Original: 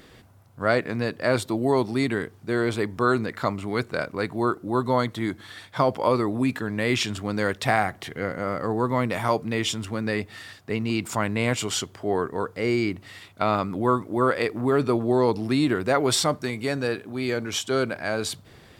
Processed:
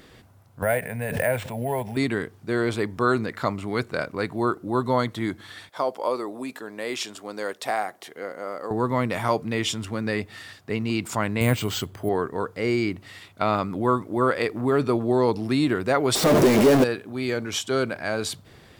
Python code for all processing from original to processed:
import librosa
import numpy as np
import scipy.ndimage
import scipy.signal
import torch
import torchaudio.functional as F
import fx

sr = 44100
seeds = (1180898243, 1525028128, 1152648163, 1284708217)

y = fx.chain(x, sr, fx.fixed_phaser(hz=1200.0, stages=6),
    fx.resample_bad(factor=4, down='none', up='hold'),
    fx.pre_swell(db_per_s=45.0), at=(0.62, 1.97))
y = fx.chain(y, sr, fx.highpass(hz=450.0, slope=12),
    fx.peak_eq(hz=2100.0, db=-7.5, octaves=2.2), at=(5.69, 8.71))
y = fx.chain(y, sr, fx.low_shelf(hz=160.0, db=10.0),
    fx.resample_bad(factor=4, down='filtered', up='hold'), at=(11.41, 12.09))
y = fx.chain(y, sr, fx.clip_1bit(),
    fx.peak_eq(hz=400.0, db=14.5, octaves=2.4), at=(16.15, 16.84))